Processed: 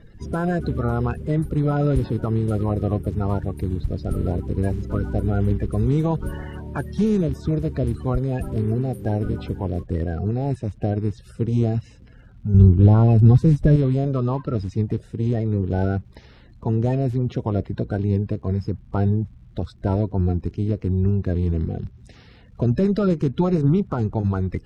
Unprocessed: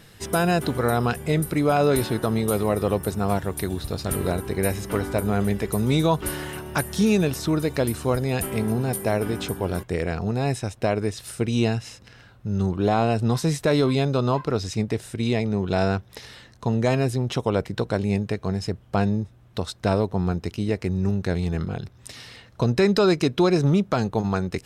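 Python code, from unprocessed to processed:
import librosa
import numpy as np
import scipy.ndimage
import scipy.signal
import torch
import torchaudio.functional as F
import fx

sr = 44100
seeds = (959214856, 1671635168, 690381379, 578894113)

y = fx.spec_quant(x, sr, step_db=30)
y = fx.low_shelf(y, sr, hz=200.0, db=11.5, at=(12.54, 13.76))
y = fx.dmg_crackle(y, sr, seeds[0], per_s=170.0, level_db=-45.0)
y = fx.riaa(y, sr, side='playback')
y = y * 10.0 ** (-6.0 / 20.0)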